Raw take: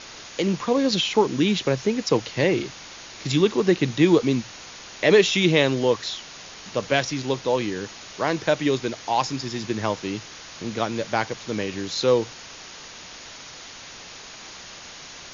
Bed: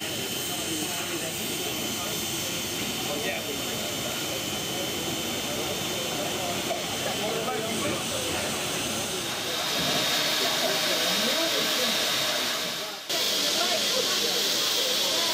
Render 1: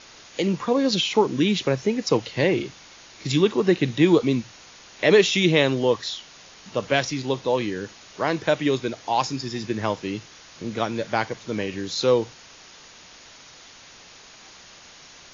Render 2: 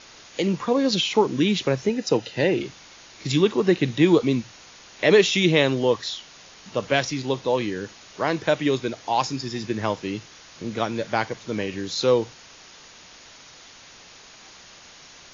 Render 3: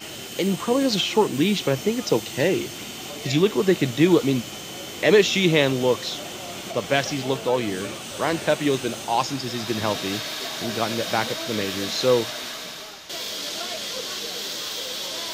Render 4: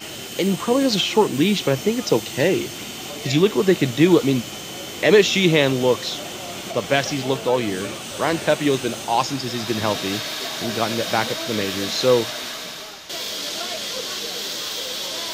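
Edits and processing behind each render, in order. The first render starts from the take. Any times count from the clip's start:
noise print and reduce 6 dB
1.89–2.61 notch comb 1100 Hz
add bed -5.5 dB
gain +2.5 dB; limiter -3 dBFS, peak gain reduction 1.5 dB

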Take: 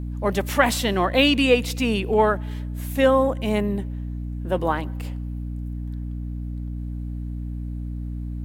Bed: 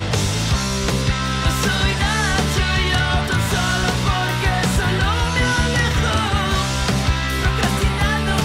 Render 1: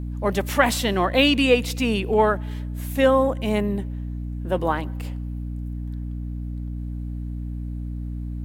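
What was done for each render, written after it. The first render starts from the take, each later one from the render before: nothing audible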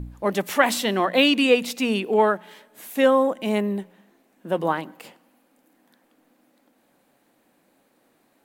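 de-hum 60 Hz, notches 5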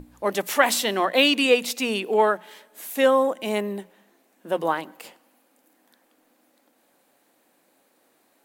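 tone controls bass -9 dB, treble +4 dB; notches 60/120/180 Hz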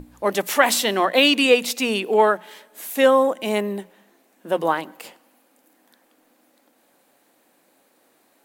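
gain +3 dB; limiter -3 dBFS, peak gain reduction 2 dB

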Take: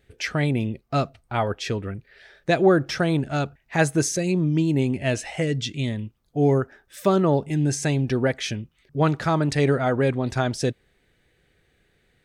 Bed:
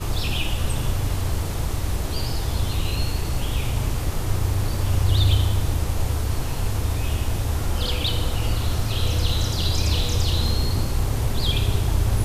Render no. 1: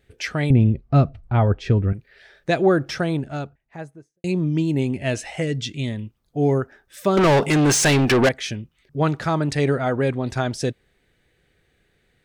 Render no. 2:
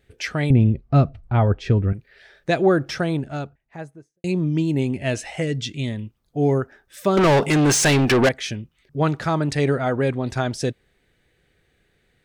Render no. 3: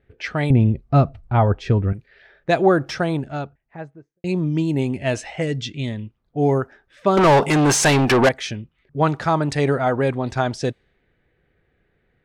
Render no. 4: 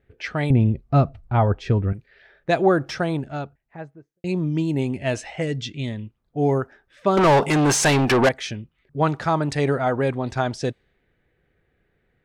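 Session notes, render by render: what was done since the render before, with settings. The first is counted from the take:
0.5–1.93 RIAA curve playback; 2.8–4.24 studio fade out; 7.17–8.29 overdrive pedal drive 29 dB, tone 6000 Hz, clips at -9 dBFS
nothing audible
low-pass opened by the level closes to 1900 Hz, open at -18 dBFS; dynamic EQ 900 Hz, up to +6 dB, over -36 dBFS, Q 1.3
gain -2 dB

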